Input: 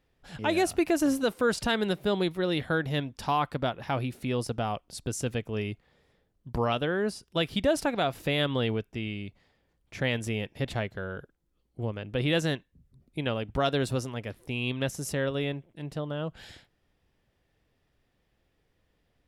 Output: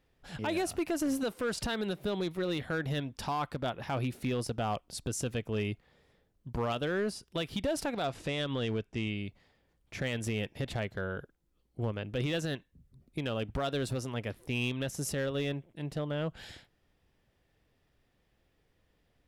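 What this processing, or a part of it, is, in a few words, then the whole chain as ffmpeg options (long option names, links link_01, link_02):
limiter into clipper: -filter_complex "[0:a]alimiter=limit=-22dB:level=0:latency=1:release=142,asoftclip=type=hard:threshold=-25.5dB,asettb=1/sr,asplit=3[link_01][link_02][link_03];[link_01]atrim=end=8.054[link_04];[link_02]atrim=start=8.05:end=9.18,asetpts=PTS-STARTPTS,afade=type=in:duration=0.004:curve=qsin,afade=type=out:start_time=1.126:duration=0.004:curve=qsin,lowpass=frequency=9400:width=0.5412,lowpass=frequency=9400:width=1.3066[link_05];[link_03]atrim=start=9.176[link_06];[link_04][link_05]acrossfade=duration=0.004:curve1=hsin:curve2=qsin[link_07];[link_07][link_06]acrossfade=duration=0.004:curve1=qsin:curve2=hsin"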